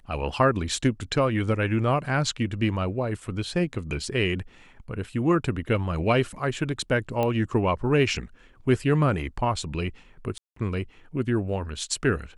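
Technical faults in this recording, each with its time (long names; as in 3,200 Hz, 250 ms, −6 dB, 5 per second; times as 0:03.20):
0:07.23: click −14 dBFS
0:10.38–0:10.56: drop-out 184 ms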